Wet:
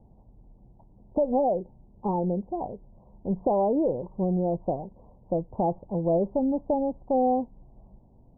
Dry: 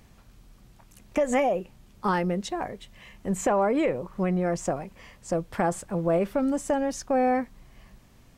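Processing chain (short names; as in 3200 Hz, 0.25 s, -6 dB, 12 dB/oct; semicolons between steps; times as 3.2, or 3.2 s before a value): steep low-pass 930 Hz 72 dB/oct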